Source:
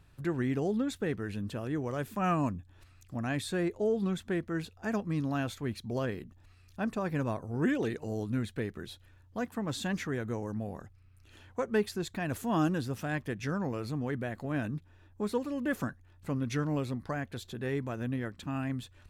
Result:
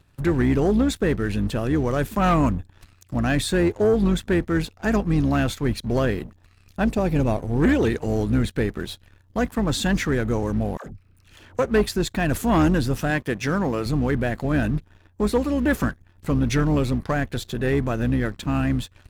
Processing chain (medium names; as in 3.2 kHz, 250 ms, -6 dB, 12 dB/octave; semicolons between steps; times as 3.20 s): octave divider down 2 oct, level -6 dB; 6.84–7.60 s: high-order bell 1.4 kHz -8 dB 1.1 oct; 13.10–13.86 s: high-pass 170 Hz 6 dB/octave; waveshaping leveller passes 2; 10.77–11.59 s: phase dispersion lows, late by 88 ms, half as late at 450 Hz; trim +4.5 dB